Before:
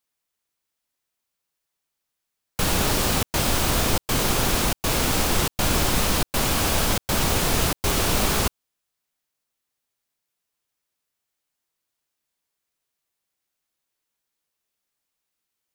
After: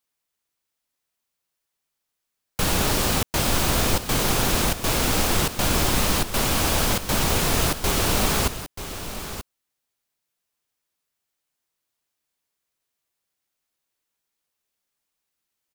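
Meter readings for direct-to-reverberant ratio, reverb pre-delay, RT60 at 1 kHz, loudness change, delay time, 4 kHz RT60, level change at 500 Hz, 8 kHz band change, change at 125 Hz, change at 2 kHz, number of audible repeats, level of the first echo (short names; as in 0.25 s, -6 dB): none, none, none, +0.5 dB, 0.934 s, none, +0.5 dB, +0.5 dB, +0.5 dB, +0.5 dB, 1, -11.5 dB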